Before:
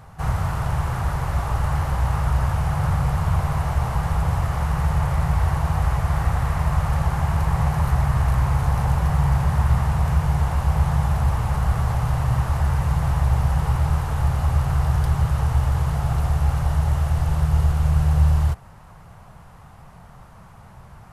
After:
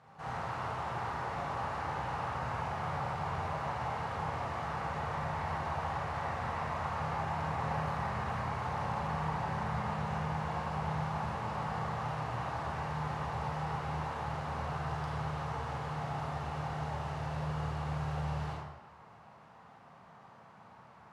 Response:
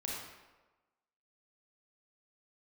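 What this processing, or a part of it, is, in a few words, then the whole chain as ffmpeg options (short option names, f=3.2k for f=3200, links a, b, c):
supermarket ceiling speaker: -filter_complex "[0:a]highpass=230,lowpass=5k[a];[1:a]atrim=start_sample=2205[b];[a][b]afir=irnorm=-1:irlink=0,volume=-8dB"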